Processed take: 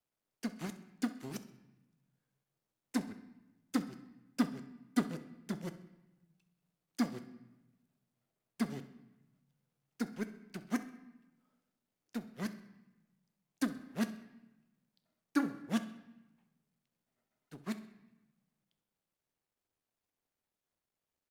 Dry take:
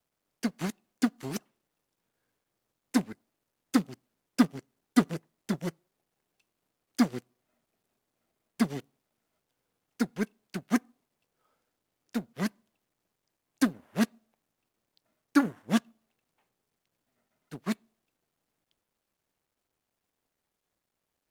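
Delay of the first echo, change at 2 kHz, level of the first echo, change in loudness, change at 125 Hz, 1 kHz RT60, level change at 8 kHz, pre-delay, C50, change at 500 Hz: 65 ms, -8.0 dB, -17.5 dB, -8.5 dB, -8.0 dB, 1.0 s, -8.0 dB, 8 ms, 12.0 dB, -8.0 dB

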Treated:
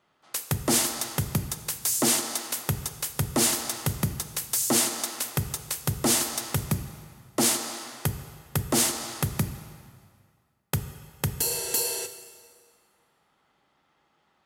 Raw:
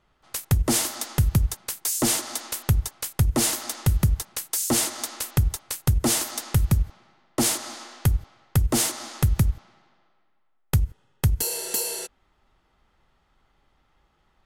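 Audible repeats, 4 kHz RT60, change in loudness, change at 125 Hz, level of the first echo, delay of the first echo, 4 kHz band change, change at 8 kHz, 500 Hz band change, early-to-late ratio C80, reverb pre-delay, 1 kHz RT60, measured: no echo, 1.8 s, -2.0 dB, -7.5 dB, no echo, no echo, +0.5 dB, +0.5 dB, 0.0 dB, 12.5 dB, 25 ms, 2.0 s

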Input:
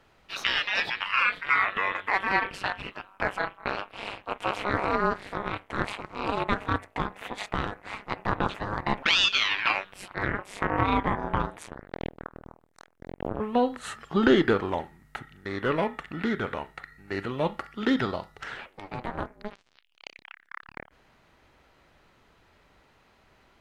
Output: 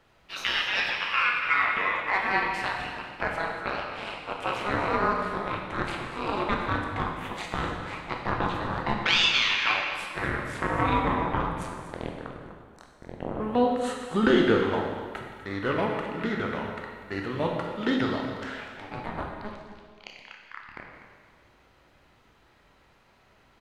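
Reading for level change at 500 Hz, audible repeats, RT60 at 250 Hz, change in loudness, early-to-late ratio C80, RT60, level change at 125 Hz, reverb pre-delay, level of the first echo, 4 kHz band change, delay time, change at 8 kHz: +1.0 dB, 1, 1.7 s, +0.5 dB, 4.0 dB, 1.7 s, +1.0 dB, 7 ms, -13.5 dB, +0.5 dB, 246 ms, +0.5 dB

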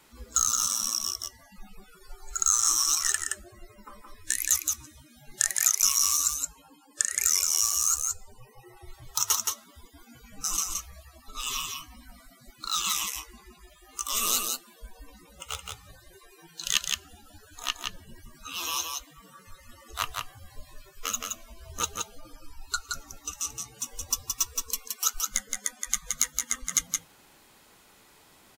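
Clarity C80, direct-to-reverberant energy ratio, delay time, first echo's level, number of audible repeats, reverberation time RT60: no reverb, no reverb, 171 ms, -4.0 dB, 1, no reverb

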